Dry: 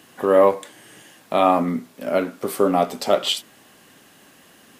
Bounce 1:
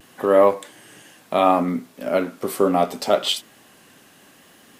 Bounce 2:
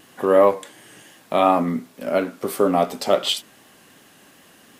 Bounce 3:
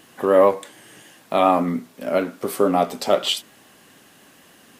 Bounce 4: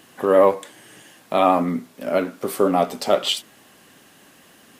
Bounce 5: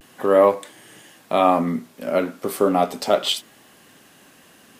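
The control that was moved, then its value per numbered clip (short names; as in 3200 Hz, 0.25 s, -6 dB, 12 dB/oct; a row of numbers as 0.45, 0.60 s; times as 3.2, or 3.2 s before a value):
vibrato, rate: 0.7, 2.8, 6.9, 12, 0.39 Hz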